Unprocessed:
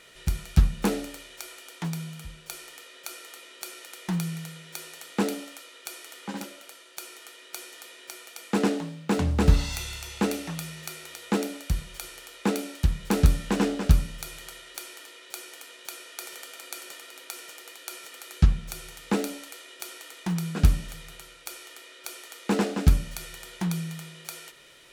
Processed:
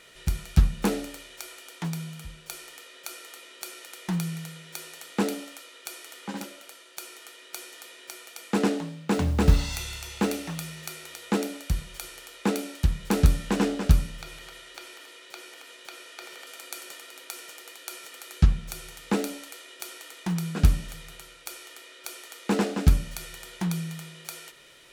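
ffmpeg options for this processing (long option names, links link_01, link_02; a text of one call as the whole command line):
ffmpeg -i in.wav -filter_complex "[0:a]asettb=1/sr,asplit=3[link_01][link_02][link_03];[link_01]atrim=end=9.144[link_04];[link_02]atrim=start=9.14:end=10.95,asetpts=PTS-STARTPTS,afade=type=in:duration=0.004:curve=qsin,afade=type=out:start_time=1.806:duration=0.004:curve=qsin,acrusher=bits=8:mode=log:mix=0:aa=0.000001[link_05];[link_03]atrim=start=10.946[link_06];[link_04][link_05]acrossfade=duration=0.004:curve1=hsin:curve2=qsin[link_07];[link_07][link_06]acrossfade=duration=0.004:curve1=qsin:curve2=hsin,asettb=1/sr,asplit=3[link_08][link_09][link_10];[link_08]atrim=end=14.094[link_11];[link_09]atrim=start=14.09:end=16.47,asetpts=PTS-STARTPTS,afade=type=in:duration=0.004:curve=qsin,afade=type=out:start_time=2.376:duration=0.004:curve=qsin,acrossover=split=4900[link_12][link_13];[link_13]acompressor=threshold=-50dB:ratio=4:attack=1:release=60[link_14];[link_12][link_14]amix=inputs=2:normalize=0[link_15];[link_10]atrim=start=16.466[link_16];[link_11][link_15]acrossfade=duration=0.004:curve1=hsin:curve2=qsin[link_17];[link_17][link_16]acrossfade=duration=0.004:curve1=qsin:curve2=hsin" out.wav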